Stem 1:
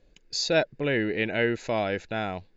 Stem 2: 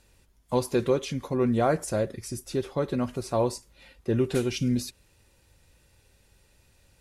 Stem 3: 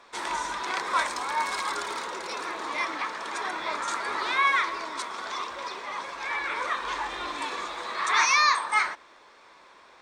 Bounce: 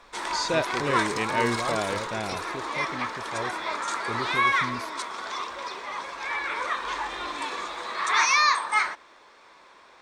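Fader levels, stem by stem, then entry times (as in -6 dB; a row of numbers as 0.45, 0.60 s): -2.5, -11.0, +0.5 dB; 0.00, 0.00, 0.00 s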